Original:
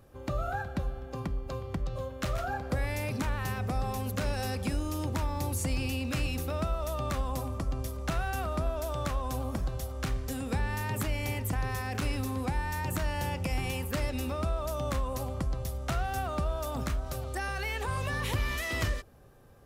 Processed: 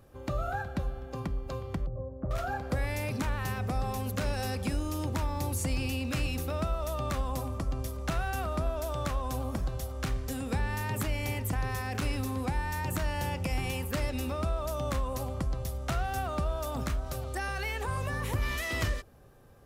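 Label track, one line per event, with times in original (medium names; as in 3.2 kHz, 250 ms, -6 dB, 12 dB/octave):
1.860000	2.310000	Bessel low-pass 550 Hz, order 4
17.700000	18.410000	peaking EQ 3.5 kHz -2 dB -> -10 dB 1.5 oct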